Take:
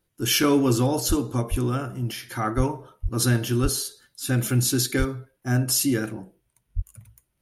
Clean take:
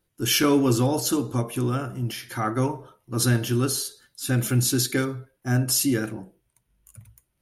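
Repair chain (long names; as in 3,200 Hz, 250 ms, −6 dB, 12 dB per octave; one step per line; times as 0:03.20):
high-pass at the plosives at 0:01.08/0:01.50/0:02.56/0:03.02/0:03.62/0:04.98/0:06.75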